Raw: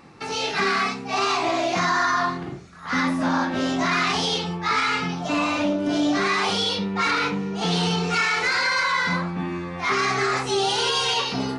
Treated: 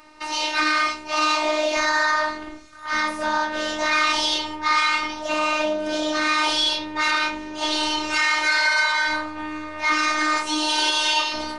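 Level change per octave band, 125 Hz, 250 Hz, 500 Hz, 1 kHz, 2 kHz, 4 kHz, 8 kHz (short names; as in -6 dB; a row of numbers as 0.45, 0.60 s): under -20 dB, -5.0 dB, -1.0 dB, +1.0 dB, +3.0 dB, +2.5 dB, +2.5 dB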